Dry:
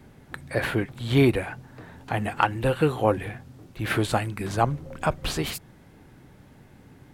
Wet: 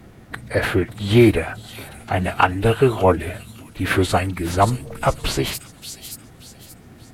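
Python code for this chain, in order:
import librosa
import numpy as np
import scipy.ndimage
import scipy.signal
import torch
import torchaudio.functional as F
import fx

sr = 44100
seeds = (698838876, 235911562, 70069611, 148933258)

y = fx.echo_wet_highpass(x, sr, ms=578, feedback_pct=34, hz=5200.0, wet_db=-3.0)
y = fx.pitch_keep_formants(y, sr, semitones=-2.5)
y = y * librosa.db_to_amplitude(6.5)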